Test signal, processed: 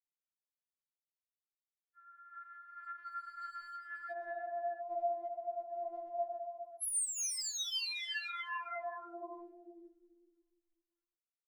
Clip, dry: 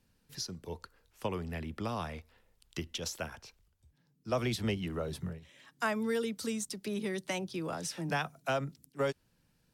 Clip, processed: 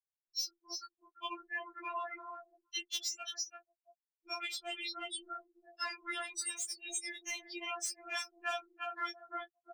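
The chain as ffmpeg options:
-filter_complex "[0:a]asplit=5[s0][s1][s2][s3][s4];[s1]adelay=340,afreqshift=40,volume=0.473[s5];[s2]adelay=680,afreqshift=80,volume=0.151[s6];[s3]adelay=1020,afreqshift=120,volume=0.0484[s7];[s4]adelay=1360,afreqshift=160,volume=0.0155[s8];[s0][s5][s6][s7][s8]amix=inputs=5:normalize=0,afftfilt=real='re*gte(hypot(re,im),0.0158)':imag='im*gte(hypot(re,im),0.0158)':win_size=1024:overlap=0.75,highpass=1200,acrossover=split=2200[s9][s10];[s10]crystalizer=i=5:c=0[s11];[s9][s11]amix=inputs=2:normalize=0,acontrast=68,aeval=exprs='0.473*(cos(1*acos(clip(val(0)/0.473,-1,1)))-cos(1*PI/2))+0.0106*(cos(4*acos(clip(val(0)/0.473,-1,1)))-cos(4*PI/2))+0.237*(cos(5*acos(clip(val(0)/0.473,-1,1)))-cos(5*PI/2))':c=same,afftfilt=real='hypot(re,im)*cos(2*PI*random(0))':imag='hypot(re,im)*sin(2*PI*random(1))':win_size=512:overlap=0.75,adynamicequalizer=threshold=0.0224:dfrequency=8700:dqfactor=2.2:tfrequency=8700:tqfactor=2.2:attack=5:release=100:ratio=0.375:range=2:mode=boostabove:tftype=bell,asplit=2[s12][s13];[s13]volume=14.1,asoftclip=hard,volume=0.0708,volume=0.251[s14];[s12][s14]amix=inputs=2:normalize=0,acompressor=threshold=0.0316:ratio=8,afftfilt=real='re*4*eq(mod(b,16),0)':imag='im*4*eq(mod(b,16),0)':win_size=2048:overlap=0.75,volume=0.668"

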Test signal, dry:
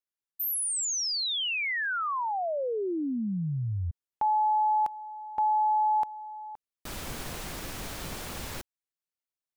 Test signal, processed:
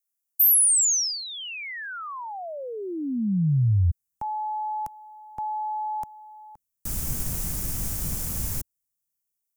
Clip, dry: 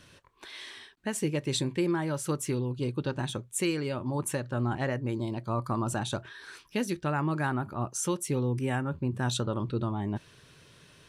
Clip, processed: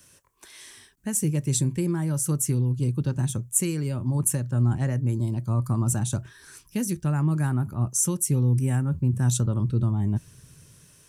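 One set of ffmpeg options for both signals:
-filter_complex "[0:a]acrossover=split=200|800|2000[s0][s1][s2][s3];[s0]dynaudnorm=f=280:g=5:m=6.31[s4];[s4][s1][s2][s3]amix=inputs=4:normalize=0,aexciter=amount=5.4:drive=6.2:freq=5600,volume=0.562"

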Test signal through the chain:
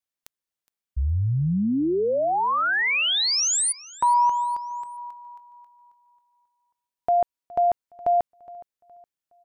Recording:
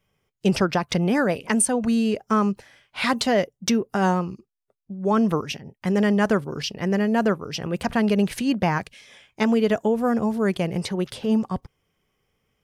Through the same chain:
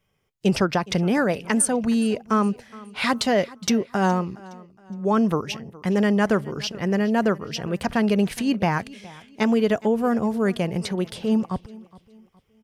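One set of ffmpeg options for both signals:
-af "aecho=1:1:416|832|1248:0.0891|0.0312|0.0109"

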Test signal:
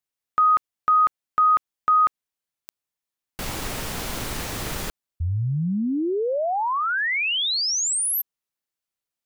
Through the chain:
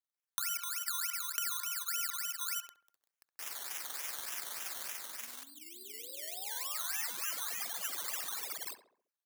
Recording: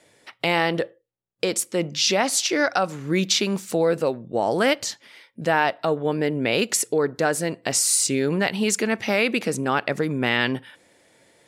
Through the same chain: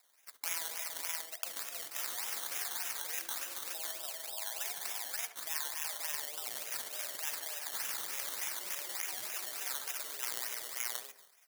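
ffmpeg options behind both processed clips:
-filter_complex "[0:a]tremolo=f=21:d=0.519,asplit=2[s0][s1];[s1]aecho=0:1:64|194|253|348|382|531:0.237|0.224|0.335|0.224|0.112|0.668[s2];[s0][s2]amix=inputs=2:normalize=0,afreqshift=150,highpass=f=1100:p=1,acrusher=samples=14:mix=1:aa=0.000001:lfo=1:lforange=8.4:lforate=3.4,asplit=2[s3][s4];[s4]adelay=68,lowpass=f=1600:p=1,volume=0.237,asplit=2[s5][s6];[s6]adelay=68,lowpass=f=1600:p=1,volume=0.5,asplit=2[s7][s8];[s8]adelay=68,lowpass=f=1600:p=1,volume=0.5,asplit=2[s9][s10];[s10]adelay=68,lowpass=f=1600:p=1,volume=0.5,asplit=2[s11][s12];[s12]adelay=68,lowpass=f=1600:p=1,volume=0.5[s13];[s5][s7][s9][s11][s13]amix=inputs=5:normalize=0[s14];[s3][s14]amix=inputs=2:normalize=0,acompressor=threshold=0.0178:ratio=6:attack=20:release=29:knee=6:detection=peak,aderivative,volume=1.26"

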